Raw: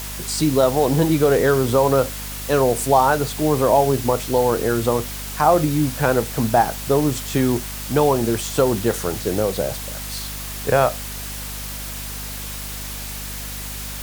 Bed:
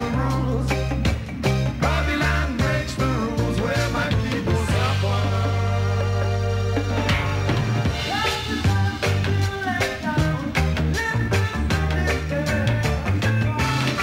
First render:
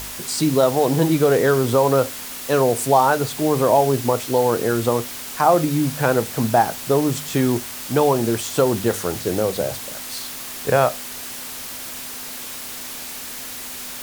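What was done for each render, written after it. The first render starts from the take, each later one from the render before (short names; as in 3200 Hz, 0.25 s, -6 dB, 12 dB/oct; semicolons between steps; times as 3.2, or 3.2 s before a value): de-hum 50 Hz, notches 4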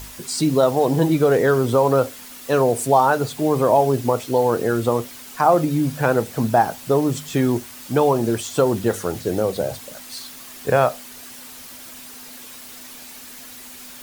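denoiser 8 dB, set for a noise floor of -33 dBFS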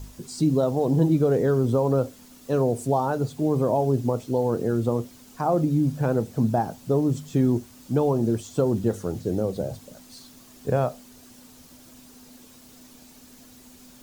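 EQ curve 210 Hz 0 dB, 2000 Hz -16 dB, 6700 Hz -10 dB, 9800 Hz -14 dB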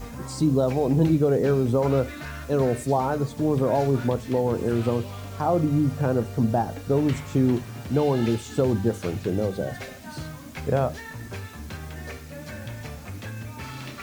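add bed -15.5 dB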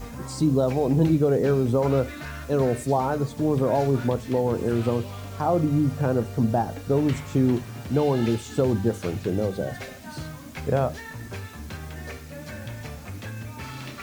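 nothing audible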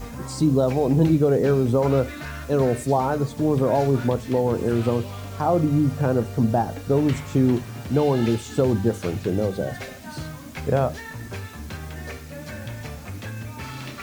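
gain +2 dB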